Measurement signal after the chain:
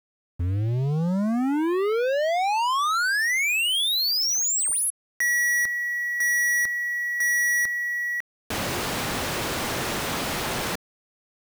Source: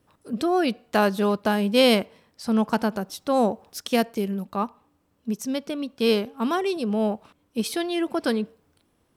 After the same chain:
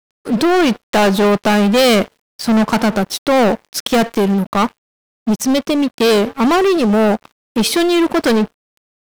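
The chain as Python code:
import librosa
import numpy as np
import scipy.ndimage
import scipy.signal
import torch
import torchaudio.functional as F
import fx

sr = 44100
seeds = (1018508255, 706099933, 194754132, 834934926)

y = fx.highpass(x, sr, hz=170.0, slope=6)
y = fx.high_shelf(y, sr, hz=5700.0, db=-7.0)
y = fx.leveller(y, sr, passes=5)
y = fx.quant_dither(y, sr, seeds[0], bits=10, dither='none')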